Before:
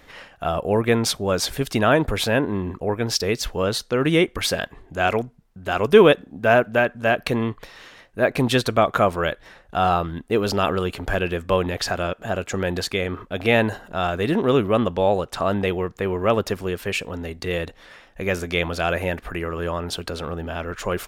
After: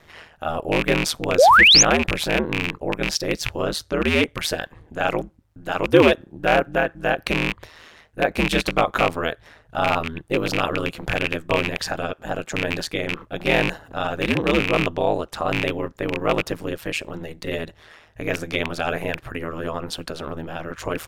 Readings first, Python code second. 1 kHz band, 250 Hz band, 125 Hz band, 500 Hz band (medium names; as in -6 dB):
+1.5 dB, -1.5 dB, -3.0 dB, -2.0 dB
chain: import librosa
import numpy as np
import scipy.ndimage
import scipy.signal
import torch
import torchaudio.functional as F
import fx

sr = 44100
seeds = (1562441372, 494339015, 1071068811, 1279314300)

y = fx.rattle_buzz(x, sr, strikes_db=-26.0, level_db=-9.0)
y = y * np.sin(2.0 * np.pi * 79.0 * np.arange(len(y)) / sr)
y = fx.spec_paint(y, sr, seeds[0], shape='rise', start_s=1.38, length_s=0.45, low_hz=450.0, high_hz=7100.0, level_db=-12.0)
y = y * librosa.db_to_amplitude(1.0)